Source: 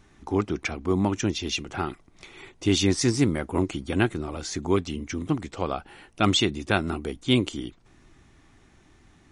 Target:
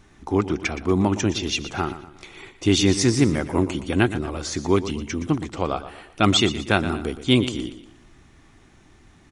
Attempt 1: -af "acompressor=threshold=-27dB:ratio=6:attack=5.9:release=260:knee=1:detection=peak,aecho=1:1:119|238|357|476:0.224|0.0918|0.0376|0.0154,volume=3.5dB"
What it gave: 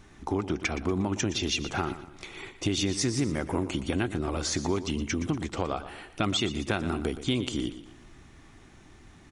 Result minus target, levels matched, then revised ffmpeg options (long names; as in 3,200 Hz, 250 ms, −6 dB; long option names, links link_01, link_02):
downward compressor: peak gain reduction +12.5 dB
-af "aecho=1:1:119|238|357|476:0.224|0.0918|0.0376|0.0154,volume=3.5dB"